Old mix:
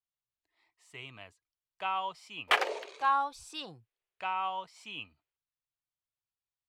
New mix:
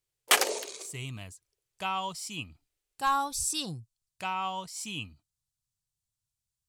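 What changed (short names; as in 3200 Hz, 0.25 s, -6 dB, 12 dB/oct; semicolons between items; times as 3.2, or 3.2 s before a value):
background: entry -2.20 s; master: remove three-band isolator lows -16 dB, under 400 Hz, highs -24 dB, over 3300 Hz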